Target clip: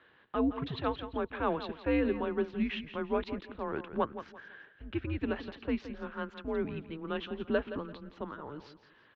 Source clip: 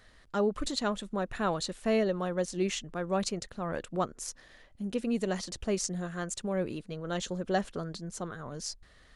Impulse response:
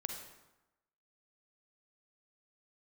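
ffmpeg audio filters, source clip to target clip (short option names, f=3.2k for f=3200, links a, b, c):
-filter_complex "[0:a]asettb=1/sr,asplit=3[a][b][c];[a]atrim=end=3.874[d];[b]atrim=start=3.87:end=5.19,asetpts=PTS-STARTPTS,afade=t=in:d=0.004:c=qsin,afade=t=out:st=1.316:d=0.004:c=qsin,equalizer=f=1.7k:t=o:w=0.38:g=9.5[e];[c]atrim=start=5.186[f];[d][e]acrossfade=d=0.004:c1=hsin:c2=qsin[g];[g][f]acrossfade=d=0.004:c1=qsin:c2=hsin,aecho=1:1:170|340|510:0.251|0.0728|0.0211,highpass=f=280:t=q:w=0.5412,highpass=f=280:t=q:w=1.307,lowpass=f=3.4k:t=q:w=0.5176,lowpass=f=3.4k:t=q:w=0.7071,lowpass=f=3.4k:t=q:w=1.932,afreqshift=-150"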